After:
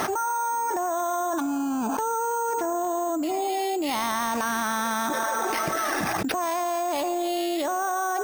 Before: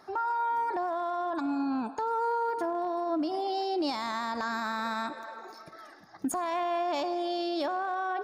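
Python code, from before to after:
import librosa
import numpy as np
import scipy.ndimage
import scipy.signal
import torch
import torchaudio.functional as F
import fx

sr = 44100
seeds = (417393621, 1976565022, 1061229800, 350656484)

y = np.repeat(x[::6], 6)[:len(x)]
y = fx.env_flatten(y, sr, amount_pct=100)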